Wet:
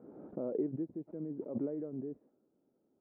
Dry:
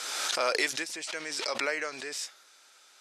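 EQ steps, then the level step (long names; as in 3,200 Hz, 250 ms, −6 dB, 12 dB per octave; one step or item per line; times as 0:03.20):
transistor ladder low-pass 300 Hz, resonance 20%
+17.5 dB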